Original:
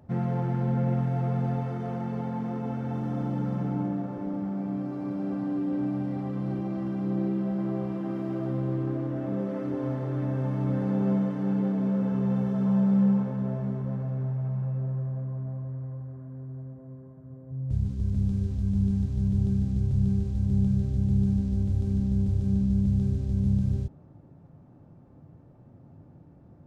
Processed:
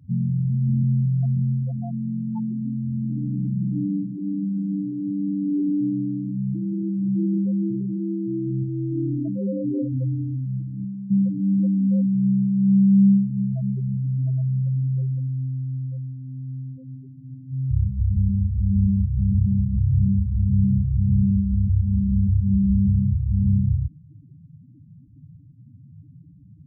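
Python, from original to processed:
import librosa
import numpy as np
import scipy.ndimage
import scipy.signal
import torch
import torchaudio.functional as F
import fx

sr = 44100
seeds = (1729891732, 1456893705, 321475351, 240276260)

y = fx.over_compress(x, sr, threshold_db=-30.0, ratio=-0.5, at=(8.62, 11.11))
y = fx.spec_topn(y, sr, count=4)
y = y * 10.0 ** (7.0 / 20.0)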